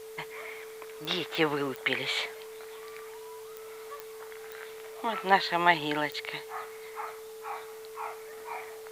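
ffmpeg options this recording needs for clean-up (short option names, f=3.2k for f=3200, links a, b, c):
-af "adeclick=t=4,bandreject=f=440:w=30,afwtdn=0.002"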